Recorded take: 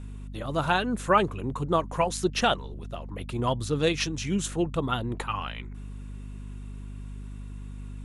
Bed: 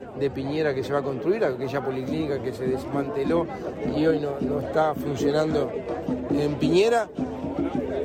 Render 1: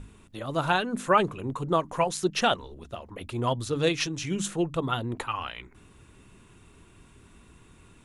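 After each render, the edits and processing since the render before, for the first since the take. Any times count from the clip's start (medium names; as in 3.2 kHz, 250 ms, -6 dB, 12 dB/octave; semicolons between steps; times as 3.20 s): hum notches 50/100/150/200/250/300 Hz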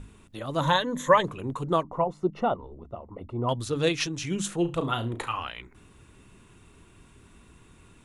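0.60–1.25 s: rippled EQ curve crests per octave 1.1, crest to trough 15 dB; 1.83–3.49 s: Savitzky-Golay filter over 65 samples; 4.58–5.42 s: flutter echo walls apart 6 m, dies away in 0.24 s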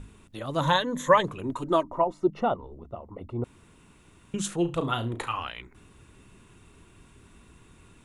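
1.44–2.28 s: comb 3.2 ms, depth 59%; 3.44–4.34 s: room tone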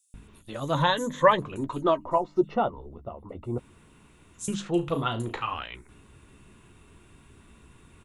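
doubling 14 ms -12 dB; bands offset in time highs, lows 140 ms, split 5.8 kHz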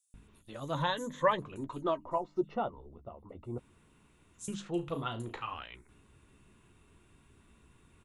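trim -8.5 dB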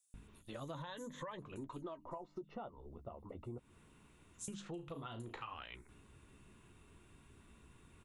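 peak limiter -25.5 dBFS, peak gain reduction 11 dB; compression 12:1, threshold -43 dBFS, peak gain reduction 14.5 dB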